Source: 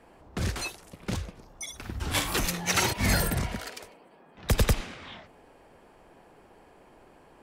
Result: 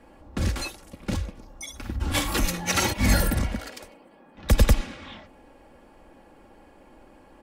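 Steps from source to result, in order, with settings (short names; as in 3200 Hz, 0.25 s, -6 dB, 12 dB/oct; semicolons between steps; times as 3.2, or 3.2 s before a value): low shelf 340 Hz +5.5 dB; comb 3.6 ms, depth 49%; 1.96–3.73 mismatched tape noise reduction decoder only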